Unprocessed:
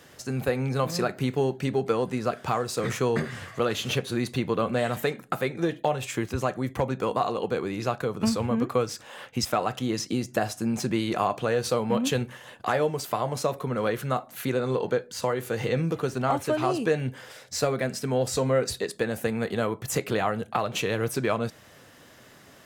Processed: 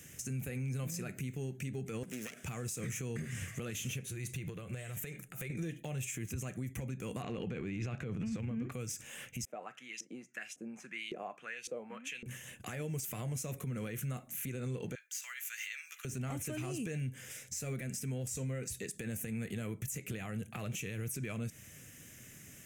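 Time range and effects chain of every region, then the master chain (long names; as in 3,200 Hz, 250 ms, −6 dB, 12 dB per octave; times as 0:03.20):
0:02.03–0:02.44: phase distortion by the signal itself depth 0.8 ms + high-pass filter 250 Hz + downward compressor 2.5 to 1, threshold −34 dBFS
0:04.07–0:05.50: parametric band 240 Hz −15 dB 0.29 octaves + downward compressor 10 to 1, threshold −33 dBFS
0:07.22–0:08.72: low-pass filter 3,400 Hz + transient designer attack +1 dB, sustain +8 dB
0:09.45–0:12.26: high-pass filter 160 Hz 24 dB per octave + auto-filter band-pass saw up 1.8 Hz 420–3,400 Hz
0:14.95–0:16.05: inverse Chebyshev high-pass filter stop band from 310 Hz, stop band 70 dB + parametric band 9,500 Hz −8 dB 0.57 octaves
whole clip: drawn EQ curve 160 Hz 0 dB, 970 Hz −21 dB, 2,400 Hz −1 dB, 4,400 Hz −15 dB, 6,300 Hz +4 dB; downward compressor, threshold −35 dBFS; brickwall limiter −32.5 dBFS; level +2 dB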